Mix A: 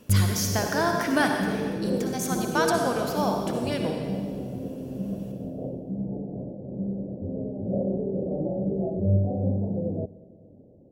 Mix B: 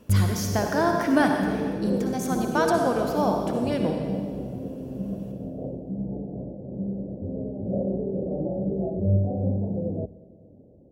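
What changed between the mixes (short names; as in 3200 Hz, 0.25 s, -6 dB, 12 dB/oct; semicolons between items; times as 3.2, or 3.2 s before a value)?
speech: add tilt shelf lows +5 dB, about 1200 Hz; master: add bell 62 Hz +8 dB 0.31 oct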